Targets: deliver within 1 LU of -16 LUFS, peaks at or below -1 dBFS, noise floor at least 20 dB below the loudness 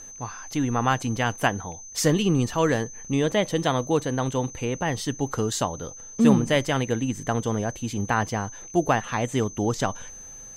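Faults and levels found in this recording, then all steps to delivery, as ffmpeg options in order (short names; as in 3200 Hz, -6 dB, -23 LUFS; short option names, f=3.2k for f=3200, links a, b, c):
steady tone 6200 Hz; tone level -40 dBFS; loudness -25.0 LUFS; peak -5.5 dBFS; loudness target -16.0 LUFS
-> -af "bandreject=f=6.2k:w=30"
-af "volume=9dB,alimiter=limit=-1dB:level=0:latency=1"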